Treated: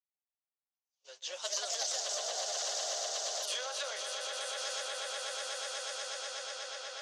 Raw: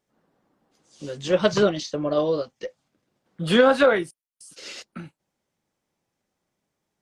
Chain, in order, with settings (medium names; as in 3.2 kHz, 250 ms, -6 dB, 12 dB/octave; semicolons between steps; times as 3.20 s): echo with a slow build-up 122 ms, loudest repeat 8, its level -7 dB; 1.05–3.50 s: ever faster or slower copies 225 ms, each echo +2 st, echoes 2; level-controlled noise filter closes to 2.3 kHz, open at -15 dBFS; peaking EQ 6.3 kHz +12.5 dB 0.99 oct; compression 2:1, threshold -28 dBFS, peak gain reduction 10 dB; inverse Chebyshev high-pass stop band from 290 Hz, stop band 50 dB; peaking EQ 1.4 kHz -12.5 dB 2.3 oct; gate -54 dBFS, range -27 dB; transformer saturation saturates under 2.3 kHz